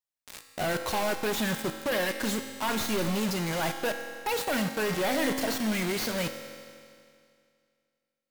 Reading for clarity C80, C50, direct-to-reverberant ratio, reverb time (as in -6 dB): 8.0 dB, 7.0 dB, 5.5 dB, 2.3 s